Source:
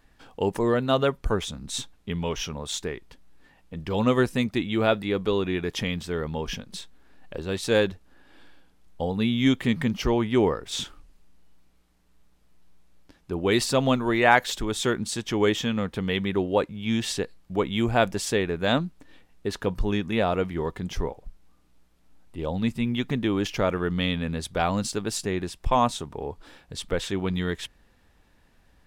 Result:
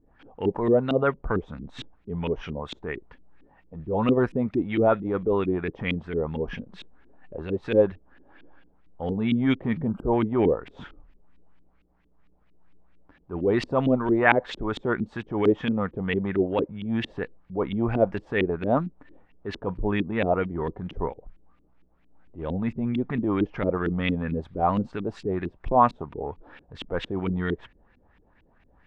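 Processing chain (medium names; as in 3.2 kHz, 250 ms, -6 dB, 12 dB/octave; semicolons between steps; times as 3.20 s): transient shaper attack -7 dB, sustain -1 dB; LFO low-pass saw up 4.4 Hz 270–2900 Hz; time-frequency box 9.87–10.12 s, 1.6–7.4 kHz -30 dB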